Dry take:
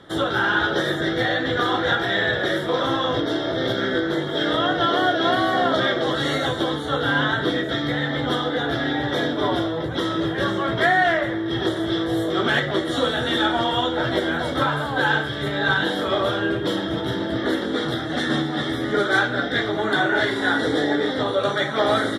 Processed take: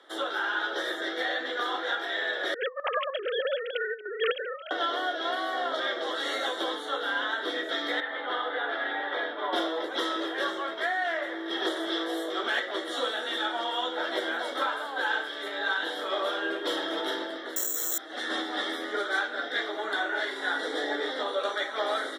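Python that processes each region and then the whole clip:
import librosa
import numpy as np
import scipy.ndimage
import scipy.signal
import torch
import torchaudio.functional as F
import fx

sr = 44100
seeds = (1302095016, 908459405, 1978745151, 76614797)

y = fx.chain(x, sr, fx.sine_speech(),
    fx.over_compress(threshold_db=-28.0, ratio=-0.5),
    fx.chopper(hz=3.3, depth_pct=60, duty_pct=85), at=(2.54, 4.71))
y = fx.chain(y, sr, fx.highpass(hz=1000.0, slope=6),
    fx.air_absorb(metres=490.0), at=(8.0, 9.53))
y = fx.chain(y, sr, fx.resample_bad(factor=6, down='filtered', up='zero_stuff'),
    fx.env_flatten(amount_pct=100), at=(17.56, 17.98))
y = scipy.signal.sosfilt(scipy.signal.bessel(8, 520.0, 'highpass', norm='mag', fs=sr, output='sos'), y)
y = fx.rider(y, sr, range_db=10, speed_s=0.5)
y = y * librosa.db_to_amplitude(-7.5)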